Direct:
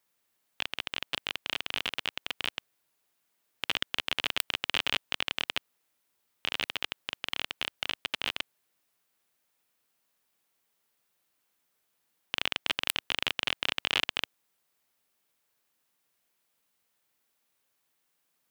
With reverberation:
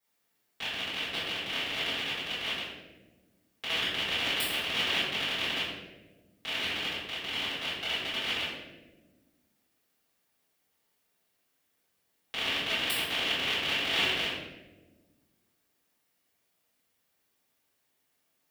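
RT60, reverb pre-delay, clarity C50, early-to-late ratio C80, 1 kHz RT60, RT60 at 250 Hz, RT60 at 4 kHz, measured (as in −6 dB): 1.3 s, 4 ms, −0.5 dB, 2.5 dB, 1.0 s, 2.0 s, 0.70 s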